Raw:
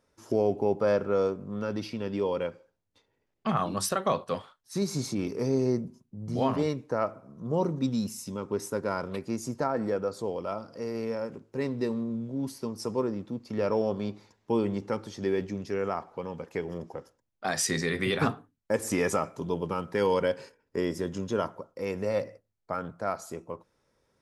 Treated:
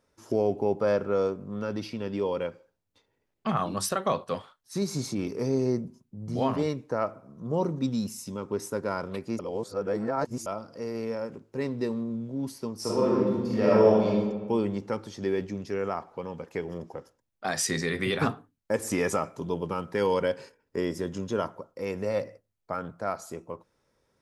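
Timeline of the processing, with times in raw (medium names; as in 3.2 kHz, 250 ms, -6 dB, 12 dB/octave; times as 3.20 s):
9.39–10.46 s: reverse
12.78–14.09 s: reverb throw, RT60 1.3 s, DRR -6.5 dB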